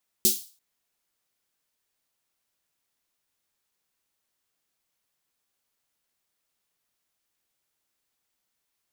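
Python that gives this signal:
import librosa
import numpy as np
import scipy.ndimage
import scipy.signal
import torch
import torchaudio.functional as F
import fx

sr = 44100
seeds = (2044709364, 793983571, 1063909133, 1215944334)

y = fx.drum_snare(sr, seeds[0], length_s=0.34, hz=220.0, second_hz=370.0, noise_db=9.5, noise_from_hz=3800.0, decay_s=0.2, noise_decay_s=0.37)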